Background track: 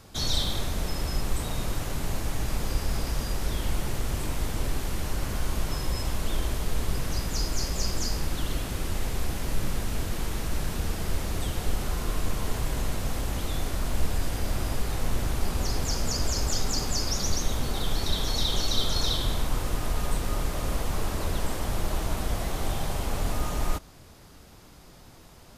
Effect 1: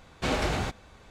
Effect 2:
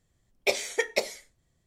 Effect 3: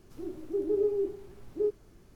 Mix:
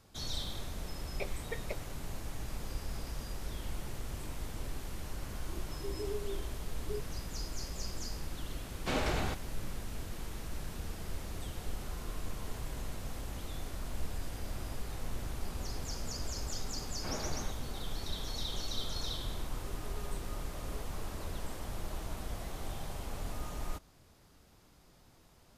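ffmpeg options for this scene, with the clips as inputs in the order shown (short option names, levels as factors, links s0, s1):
-filter_complex "[3:a]asplit=2[s0][s1];[1:a]asplit=2[s2][s3];[0:a]volume=0.266[s4];[2:a]lowpass=2700[s5];[s3]lowpass=2000[s6];[s1]alimiter=level_in=2:limit=0.0631:level=0:latency=1:release=71,volume=0.501[s7];[s5]atrim=end=1.66,asetpts=PTS-STARTPTS,volume=0.188,afade=t=in:d=0.004:c=hsin,afade=t=out:st=1.656:d=0.004:c=hsin,adelay=730[s8];[s0]atrim=end=2.15,asetpts=PTS-STARTPTS,volume=0.237,afade=t=in:d=0.004:c=hsin,afade=t=out:st=2.146:d=0.004:c=hsin,adelay=5300[s9];[s2]atrim=end=1.1,asetpts=PTS-STARTPTS,volume=0.531,afade=t=in:d=0.004:c=hsin,afade=t=out:st=1.096:d=0.004:c=hsin,adelay=8640[s10];[s6]atrim=end=1.1,asetpts=PTS-STARTPTS,volume=0.237,afade=t=in:d=0.004:c=hsin,afade=t=out:st=1.096:d=0.004:c=hsin,adelay=16810[s11];[s7]atrim=end=2.15,asetpts=PTS-STARTPTS,volume=0.133,afade=t=in:d=0.004:c=hsin,afade=t=out:st=2.146:d=0.004:c=hsin,adelay=19130[s12];[s4][s8][s9][s10][s11][s12]amix=inputs=6:normalize=0"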